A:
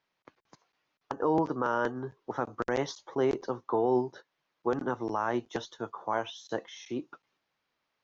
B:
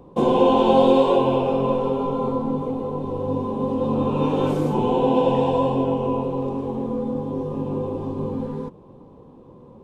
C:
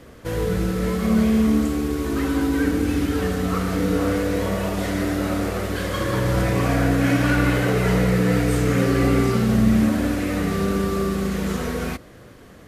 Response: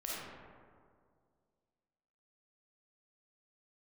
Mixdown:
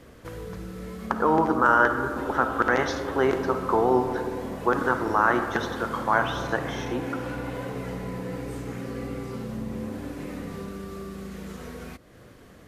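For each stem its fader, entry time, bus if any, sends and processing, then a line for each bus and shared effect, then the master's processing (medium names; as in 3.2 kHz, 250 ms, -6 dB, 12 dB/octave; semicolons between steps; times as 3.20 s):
+1.0 dB, 0.00 s, send -6.5 dB, peaking EQ 1.5 kHz +11.5 dB 1.2 oct
-12.0 dB, 2.00 s, no send, compression, threshold -21 dBFS, peak gain reduction 9.5 dB
-4.5 dB, 0.00 s, no send, compression 2:1, threshold -38 dBFS, peak gain reduction 14 dB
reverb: on, RT60 2.1 s, pre-delay 10 ms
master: none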